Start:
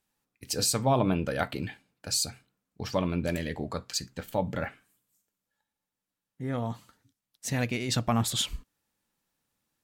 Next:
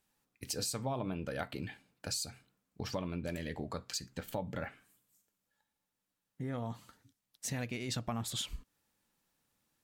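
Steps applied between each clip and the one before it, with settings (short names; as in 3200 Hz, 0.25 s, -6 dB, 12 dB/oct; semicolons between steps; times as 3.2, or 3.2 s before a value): compressor 3:1, threshold -39 dBFS, peak gain reduction 14.5 dB; gain +1 dB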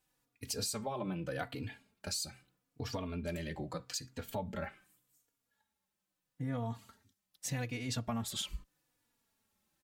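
endless flanger 3.5 ms -0.8 Hz; gain +2.5 dB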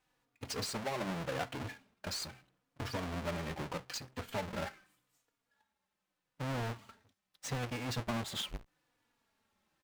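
half-waves squared off; overdrive pedal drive 3 dB, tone 3000 Hz, clips at -24 dBFS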